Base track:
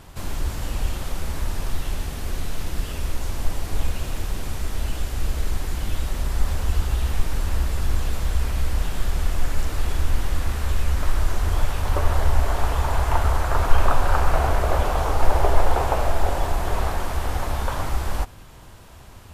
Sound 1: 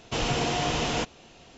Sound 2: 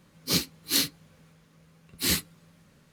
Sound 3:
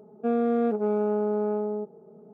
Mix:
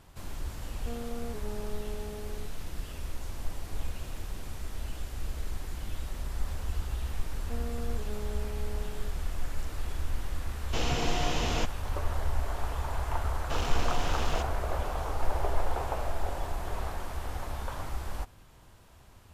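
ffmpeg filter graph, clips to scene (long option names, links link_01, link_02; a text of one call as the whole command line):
ffmpeg -i bed.wav -i cue0.wav -i cue1.wav -i cue2.wav -filter_complex "[3:a]asplit=2[link_01][link_02];[1:a]asplit=2[link_03][link_04];[0:a]volume=-11dB[link_05];[link_04]aeval=exprs='if(lt(val(0),0),0.251*val(0),val(0))':channel_layout=same[link_06];[link_01]atrim=end=2.33,asetpts=PTS-STARTPTS,volume=-16dB,afade=type=in:duration=0.004:curve=hsin,afade=type=out:start_time=2.326:duration=0.004:curve=hsin,adelay=620[link_07];[link_02]atrim=end=2.33,asetpts=PTS-STARTPTS,volume=-17dB,afade=type=in:duration=0.004:curve=hsin,afade=type=out:start_time=2.326:duration=0.004:curve=hsin,adelay=7260[link_08];[link_03]atrim=end=1.57,asetpts=PTS-STARTPTS,volume=-4.5dB,afade=type=in:duration=0.004:curve=hsin,afade=type=out:start_time=1.566:duration=0.004:curve=hsin,adelay=10610[link_09];[link_06]atrim=end=1.57,asetpts=PTS-STARTPTS,volume=-5.5dB,afade=type=in:duration=0.004:curve=hsin,afade=type=out:start_time=1.566:duration=0.004:curve=hsin,adelay=13380[link_10];[link_05][link_07][link_08][link_09][link_10]amix=inputs=5:normalize=0" out.wav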